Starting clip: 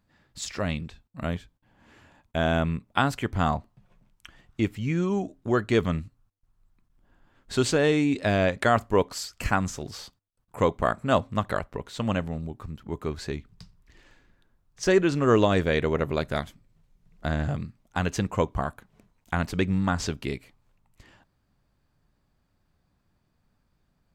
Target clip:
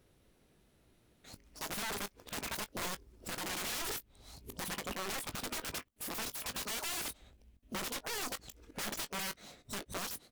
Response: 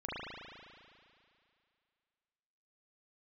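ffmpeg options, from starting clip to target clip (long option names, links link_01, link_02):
-filter_complex "[0:a]areverse,highshelf=frequency=2200:gain=6,acompressor=threshold=-37dB:ratio=2,aeval=exprs='(mod(50.1*val(0)+1,2)-1)/50.1':channel_layout=same,asplit=2[link_01][link_02];[link_02]adelay=46,volume=-12dB[link_03];[link_01][link_03]amix=inputs=2:normalize=0,asplit=2[link_04][link_05];[1:a]atrim=start_sample=2205,atrim=end_sample=3969[link_06];[link_05][link_06]afir=irnorm=-1:irlink=0,volume=-27dB[link_07];[link_04][link_07]amix=inputs=2:normalize=0,asetrate=103194,aresample=44100,volume=1dB"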